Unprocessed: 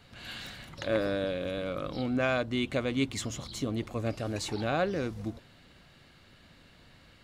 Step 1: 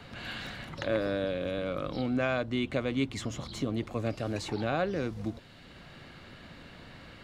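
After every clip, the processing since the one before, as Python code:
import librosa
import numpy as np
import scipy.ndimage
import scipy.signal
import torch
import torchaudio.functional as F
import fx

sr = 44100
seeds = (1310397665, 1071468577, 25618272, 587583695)

y = fx.high_shelf(x, sr, hz=5900.0, db=-8.0)
y = fx.band_squash(y, sr, depth_pct=40)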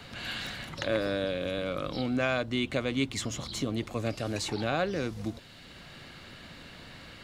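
y = fx.high_shelf(x, sr, hz=2900.0, db=8.5)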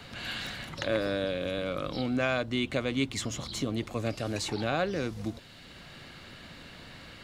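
y = x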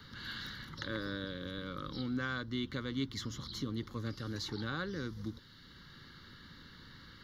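y = fx.fixed_phaser(x, sr, hz=2500.0, stages=6)
y = y * 10.0 ** (-4.5 / 20.0)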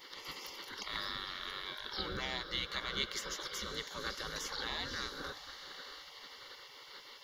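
y = fx.echo_diffused(x, sr, ms=567, feedback_pct=56, wet_db=-13.0)
y = fx.spec_gate(y, sr, threshold_db=-15, keep='weak')
y = y * 10.0 ** (9.0 / 20.0)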